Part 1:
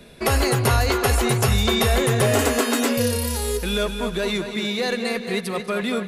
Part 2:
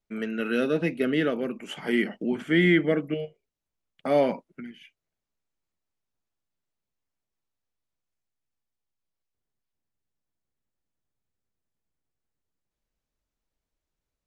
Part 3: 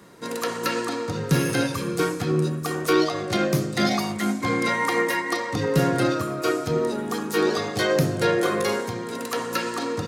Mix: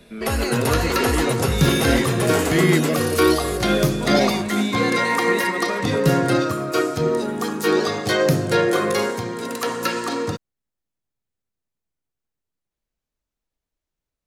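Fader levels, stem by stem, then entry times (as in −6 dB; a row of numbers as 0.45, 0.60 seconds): −3.5, 0.0, +3.0 decibels; 0.00, 0.00, 0.30 seconds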